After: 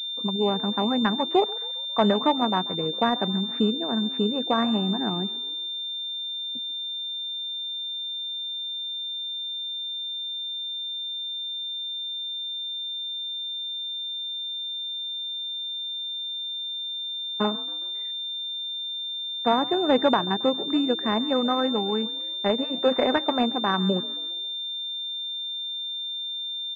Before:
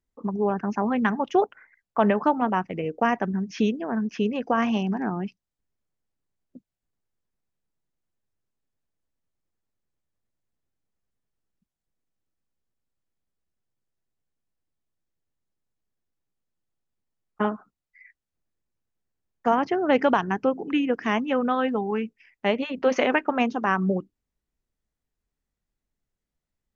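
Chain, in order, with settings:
echo with shifted repeats 136 ms, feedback 50%, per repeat +48 Hz, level −19.5 dB
switching amplifier with a slow clock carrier 3,600 Hz

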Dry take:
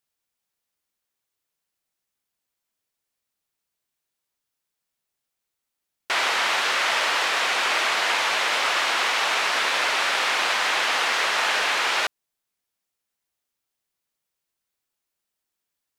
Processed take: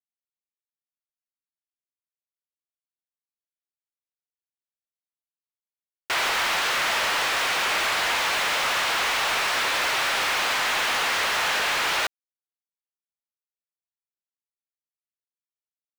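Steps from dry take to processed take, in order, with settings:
centre clipping without the shift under −33.5 dBFS
power curve on the samples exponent 0.5
level −7 dB

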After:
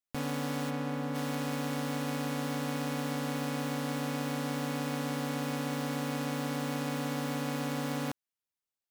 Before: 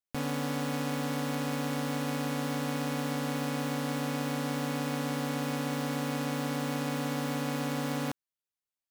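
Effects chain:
0:00.69–0:01.14: high-shelf EQ 4,300 Hz → 2,300 Hz −11.5 dB
level −1.5 dB

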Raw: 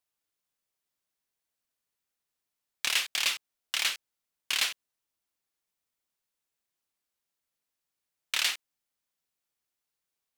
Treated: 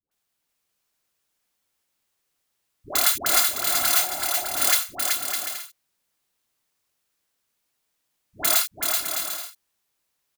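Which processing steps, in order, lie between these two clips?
samples in bit-reversed order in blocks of 256 samples
all-pass dispersion highs, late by 114 ms, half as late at 580 Hz
on a send: bouncing-ball delay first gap 380 ms, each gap 0.6×, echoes 5
on the sum: healed spectral selection 0:03.79–0:04.60, 330–1,000 Hz before
level +8 dB

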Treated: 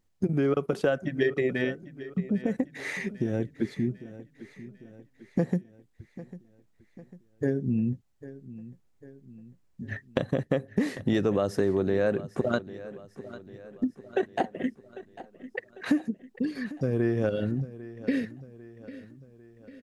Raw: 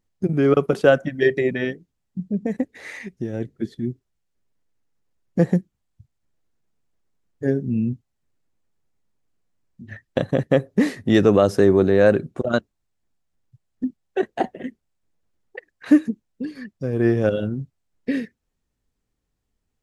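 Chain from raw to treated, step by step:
downward compressor 4 to 1, threshold −26 dBFS, peak gain reduction 14.5 dB
repeating echo 798 ms, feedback 52%, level −16.5 dB
level +2 dB

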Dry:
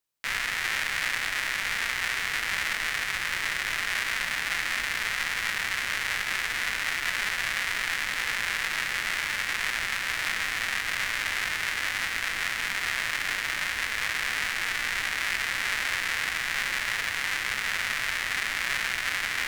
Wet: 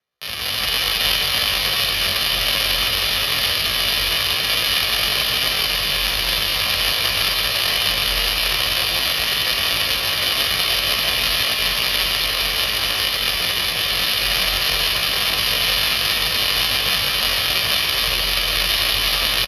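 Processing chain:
decimation without filtering 9×
Butterworth low-pass 10,000 Hz 72 dB per octave
convolution reverb RT60 3.3 s, pre-delay 90 ms, DRR 2.5 dB
pitch shifter +8 semitones
frequency shifter +43 Hz
comb filter 1.7 ms, depth 39%
single-tap delay 813 ms −9 dB
automatic gain control gain up to 8.5 dB
level +1 dB

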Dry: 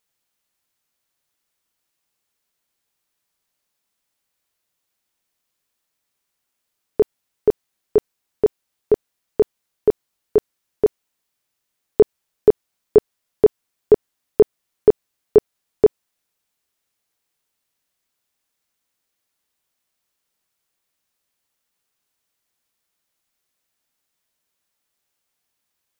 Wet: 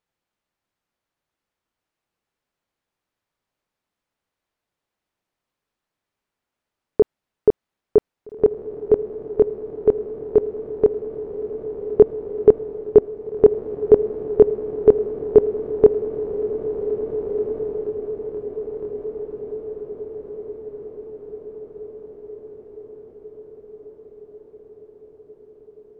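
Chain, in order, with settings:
low-pass filter 1,300 Hz 6 dB per octave
on a send: feedback delay with all-pass diffusion 1,719 ms, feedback 58%, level −8 dB
on the sum: level +1.5 dB

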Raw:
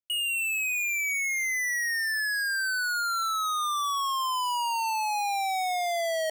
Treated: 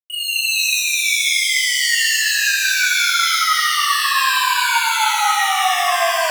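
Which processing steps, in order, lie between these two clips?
bit reduction 9 bits
reverb with rising layers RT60 2 s, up +7 semitones, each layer −2 dB, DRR −7.5 dB

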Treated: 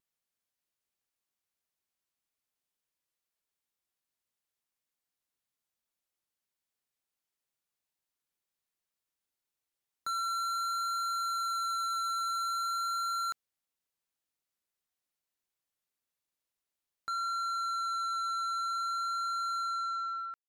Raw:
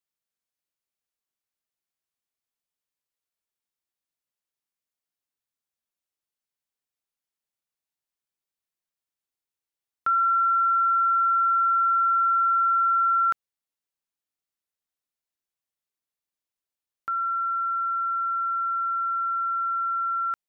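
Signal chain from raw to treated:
fade-out on the ending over 0.92 s
pitch vibrato 0.48 Hz 8.1 cents
soft clipping −33.5 dBFS, distortion −7 dB
level +1 dB

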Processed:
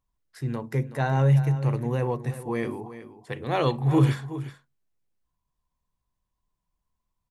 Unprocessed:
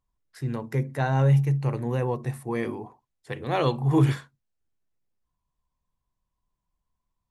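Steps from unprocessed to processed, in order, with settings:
single-tap delay 373 ms −13.5 dB

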